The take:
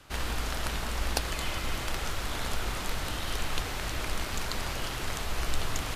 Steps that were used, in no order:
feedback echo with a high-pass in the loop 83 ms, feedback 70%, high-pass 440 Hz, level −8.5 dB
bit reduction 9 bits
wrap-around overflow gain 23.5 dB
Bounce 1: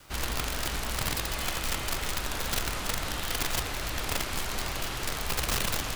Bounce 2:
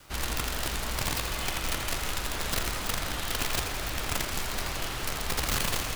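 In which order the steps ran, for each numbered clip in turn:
feedback echo with a high-pass in the loop, then bit reduction, then wrap-around overflow
bit reduction, then wrap-around overflow, then feedback echo with a high-pass in the loop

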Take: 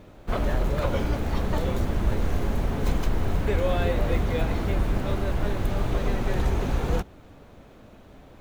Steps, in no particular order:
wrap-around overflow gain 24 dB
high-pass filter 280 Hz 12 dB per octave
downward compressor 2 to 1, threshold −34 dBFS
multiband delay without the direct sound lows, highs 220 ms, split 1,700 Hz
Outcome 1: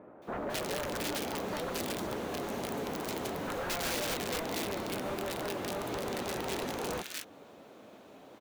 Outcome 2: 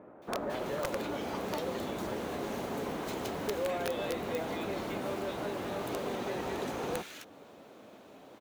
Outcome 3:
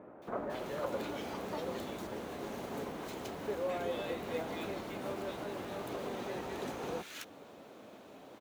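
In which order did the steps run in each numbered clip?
high-pass filter, then wrap-around overflow, then downward compressor, then multiband delay without the direct sound
high-pass filter, then downward compressor, then multiband delay without the direct sound, then wrap-around overflow
multiband delay without the direct sound, then downward compressor, then high-pass filter, then wrap-around overflow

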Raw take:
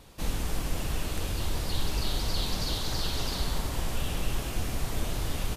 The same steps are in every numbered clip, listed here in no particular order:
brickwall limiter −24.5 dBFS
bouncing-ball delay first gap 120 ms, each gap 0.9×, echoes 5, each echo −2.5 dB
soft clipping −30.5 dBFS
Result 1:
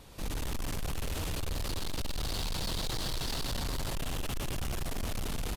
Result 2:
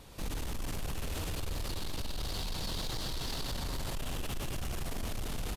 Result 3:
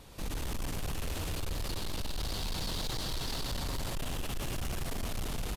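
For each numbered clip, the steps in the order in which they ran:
bouncing-ball delay, then soft clipping, then brickwall limiter
bouncing-ball delay, then brickwall limiter, then soft clipping
brickwall limiter, then bouncing-ball delay, then soft clipping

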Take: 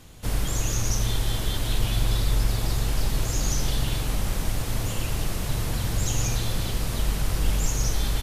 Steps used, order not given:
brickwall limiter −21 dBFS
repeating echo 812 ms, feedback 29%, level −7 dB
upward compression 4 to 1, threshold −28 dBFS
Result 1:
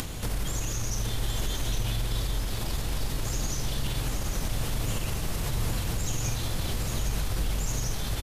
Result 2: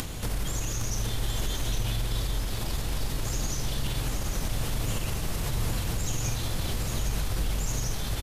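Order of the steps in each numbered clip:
brickwall limiter, then repeating echo, then upward compression
brickwall limiter, then upward compression, then repeating echo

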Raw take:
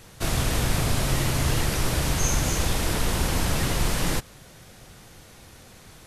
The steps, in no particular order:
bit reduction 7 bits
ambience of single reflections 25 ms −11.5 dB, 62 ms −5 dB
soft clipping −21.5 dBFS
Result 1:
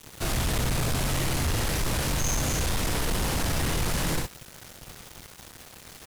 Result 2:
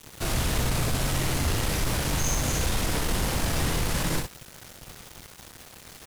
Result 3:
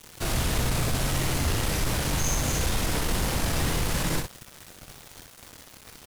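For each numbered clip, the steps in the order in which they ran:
ambience of single reflections, then soft clipping, then bit reduction
soft clipping, then ambience of single reflections, then bit reduction
soft clipping, then bit reduction, then ambience of single reflections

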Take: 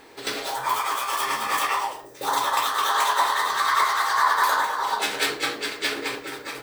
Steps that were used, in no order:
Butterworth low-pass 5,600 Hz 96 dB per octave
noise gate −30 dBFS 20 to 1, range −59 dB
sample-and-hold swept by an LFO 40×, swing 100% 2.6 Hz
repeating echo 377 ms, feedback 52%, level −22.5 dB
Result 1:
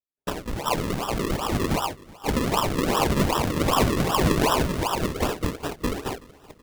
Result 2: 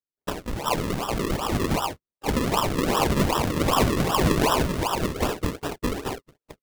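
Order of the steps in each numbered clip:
noise gate, then Butterworth low-pass, then sample-and-hold swept by an LFO, then repeating echo
Butterworth low-pass, then sample-and-hold swept by an LFO, then repeating echo, then noise gate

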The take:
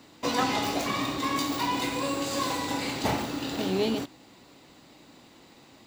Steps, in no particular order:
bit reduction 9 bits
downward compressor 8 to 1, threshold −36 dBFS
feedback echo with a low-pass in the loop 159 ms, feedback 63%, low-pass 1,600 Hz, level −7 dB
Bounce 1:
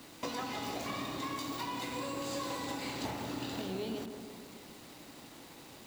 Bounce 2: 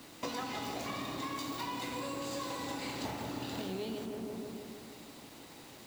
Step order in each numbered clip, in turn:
downward compressor, then bit reduction, then feedback echo with a low-pass in the loop
feedback echo with a low-pass in the loop, then downward compressor, then bit reduction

